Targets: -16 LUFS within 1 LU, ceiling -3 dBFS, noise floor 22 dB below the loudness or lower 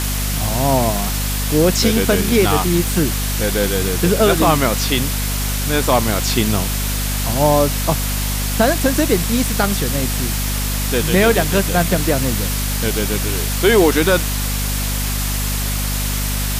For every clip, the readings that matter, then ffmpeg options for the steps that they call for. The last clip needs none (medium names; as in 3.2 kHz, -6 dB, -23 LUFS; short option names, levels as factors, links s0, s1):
hum 50 Hz; highest harmonic 250 Hz; hum level -19 dBFS; noise floor -20 dBFS; noise floor target -39 dBFS; loudness -17.0 LUFS; peak level -1.0 dBFS; loudness target -16.0 LUFS
-> -af "bandreject=f=50:t=h:w=6,bandreject=f=100:t=h:w=6,bandreject=f=150:t=h:w=6,bandreject=f=200:t=h:w=6,bandreject=f=250:t=h:w=6"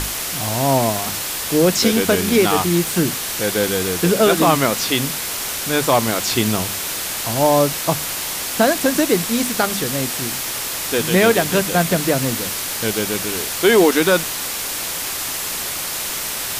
hum not found; noise floor -25 dBFS; noise floor target -40 dBFS
-> -af "afftdn=nr=15:nf=-25"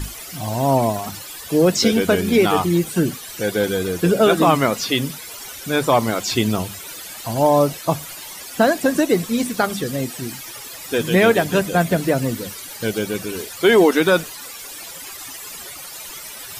noise floor -35 dBFS; noise floor target -41 dBFS
-> -af "afftdn=nr=6:nf=-35"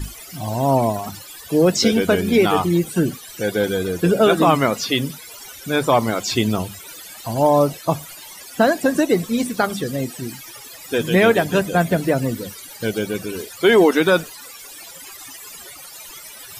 noise floor -39 dBFS; noise floor target -41 dBFS
-> -af "afftdn=nr=6:nf=-39"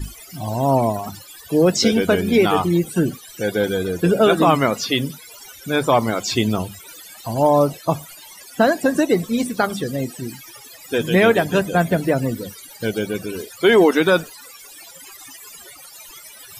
noise floor -42 dBFS; loudness -19.0 LUFS; peak level -4.0 dBFS; loudness target -16.0 LUFS
-> -af "volume=1.41,alimiter=limit=0.708:level=0:latency=1"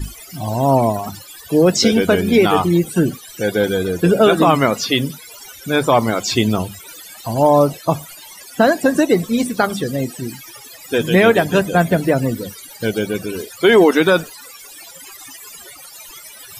loudness -16.0 LUFS; peak level -3.0 dBFS; noise floor -39 dBFS